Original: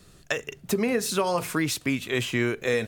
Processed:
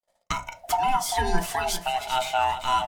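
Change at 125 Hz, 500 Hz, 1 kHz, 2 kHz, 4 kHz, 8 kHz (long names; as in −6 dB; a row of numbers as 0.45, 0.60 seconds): −5.5, −5.0, +11.5, −3.0, +2.0, +0.5 decibels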